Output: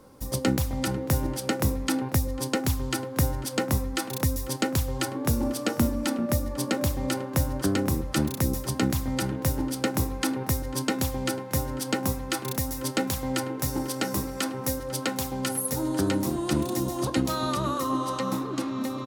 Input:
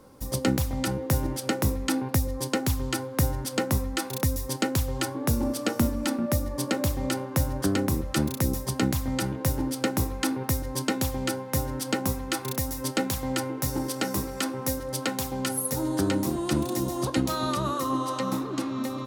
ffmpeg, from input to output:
-filter_complex "[0:a]asplit=2[a][b];[b]adelay=495.6,volume=-16dB,highshelf=f=4k:g=-11.2[c];[a][c]amix=inputs=2:normalize=0"

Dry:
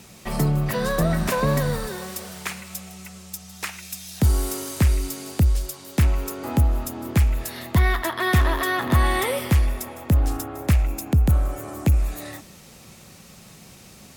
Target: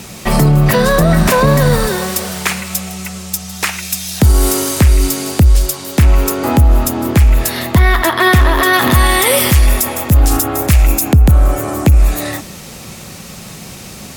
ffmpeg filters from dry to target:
-filter_complex "[0:a]asettb=1/sr,asplit=3[a][b][c];[a]atrim=end=8.734[d];[b]atrim=start=8.73:end=11.12,asetpts=PTS-STARTPTS,afade=t=in:d=0.004:c=qsin,afade=t=out:st=2.386:d=0.004:c=qsin,highshelf=f=3.1k:g=10[e];[c]atrim=start=11.116[f];[d][e]acrossfade=d=0.004:c1=hsin:c2=qsin[g];[g][f]acrossfade=d=0.004:c1=qsin:c2=hsin,alimiter=level_in=16dB:limit=-1dB:release=50:level=0:latency=1,volume=-1dB"

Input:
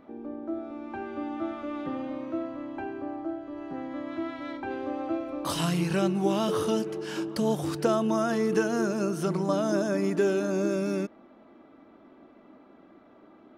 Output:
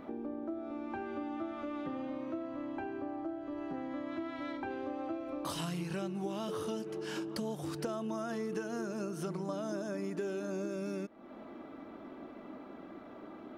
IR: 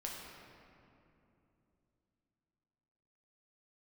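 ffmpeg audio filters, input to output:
-af "acompressor=threshold=-44dB:ratio=4,volume=5.5dB"

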